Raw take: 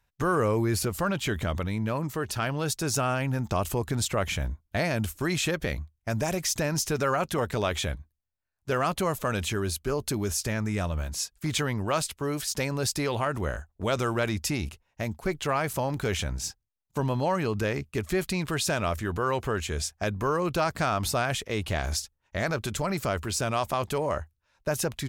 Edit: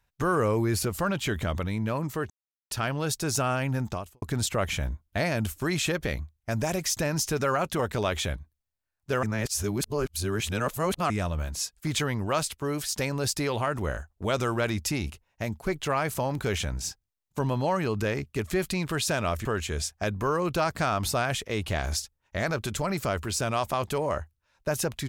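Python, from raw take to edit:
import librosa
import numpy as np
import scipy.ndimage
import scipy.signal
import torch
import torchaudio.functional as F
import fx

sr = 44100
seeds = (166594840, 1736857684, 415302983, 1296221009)

y = fx.edit(x, sr, fx.insert_silence(at_s=2.3, length_s=0.41),
    fx.fade_out_span(start_s=3.45, length_s=0.36, curve='qua'),
    fx.reverse_span(start_s=8.82, length_s=1.87),
    fx.cut(start_s=19.04, length_s=0.41), tone=tone)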